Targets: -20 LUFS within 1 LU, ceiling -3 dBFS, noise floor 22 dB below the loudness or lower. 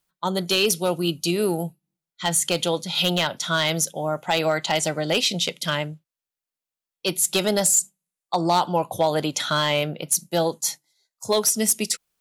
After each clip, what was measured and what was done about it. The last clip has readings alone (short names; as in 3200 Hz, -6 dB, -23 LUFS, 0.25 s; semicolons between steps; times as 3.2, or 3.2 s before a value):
clipped 0.3%; flat tops at -12.0 dBFS; loudness -22.5 LUFS; peak -12.0 dBFS; loudness target -20.0 LUFS
-> clip repair -12 dBFS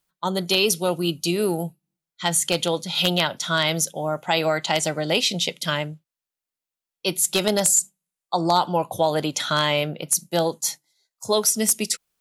clipped 0.0%; loudness -22.0 LUFS; peak -3.0 dBFS; loudness target -20.0 LUFS
-> gain +2 dB; limiter -3 dBFS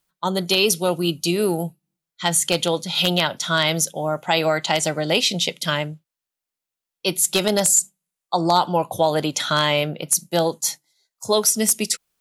loudness -20.0 LUFS; peak -3.0 dBFS; noise floor -87 dBFS